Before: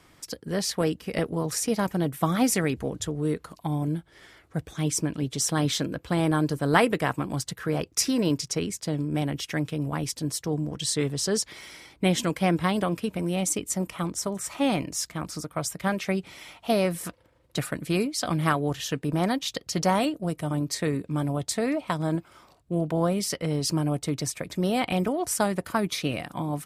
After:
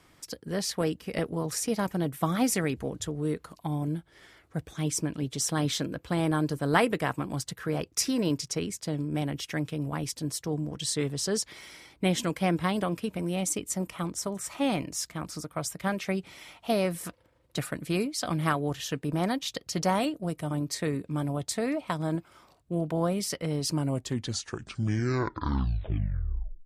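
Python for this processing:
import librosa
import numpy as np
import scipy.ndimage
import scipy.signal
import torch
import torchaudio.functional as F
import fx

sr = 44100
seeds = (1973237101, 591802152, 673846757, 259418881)

y = fx.tape_stop_end(x, sr, length_s=2.99)
y = y * librosa.db_to_amplitude(-3.0)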